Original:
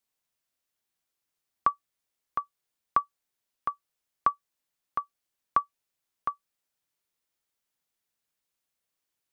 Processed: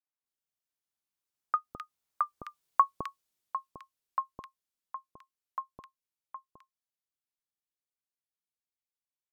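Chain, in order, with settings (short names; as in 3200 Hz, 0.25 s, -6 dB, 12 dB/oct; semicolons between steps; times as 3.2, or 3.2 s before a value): Doppler pass-by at 2.51, 27 m/s, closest 14 m; three bands offset in time mids, lows, highs 0.21/0.26 s, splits 620/1900 Hz; gain +4.5 dB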